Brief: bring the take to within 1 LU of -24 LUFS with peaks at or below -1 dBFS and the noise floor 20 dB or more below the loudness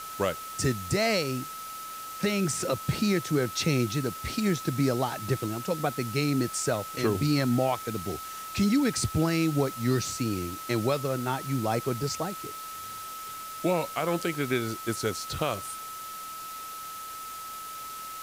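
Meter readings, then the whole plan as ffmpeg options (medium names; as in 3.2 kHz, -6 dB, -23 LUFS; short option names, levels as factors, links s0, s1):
steady tone 1.3 kHz; tone level -38 dBFS; noise floor -40 dBFS; noise floor target -50 dBFS; loudness -29.5 LUFS; peak level -13.0 dBFS; loudness target -24.0 LUFS
-> -af "bandreject=f=1300:w=30"
-af "afftdn=nr=10:nf=-40"
-af "volume=1.88"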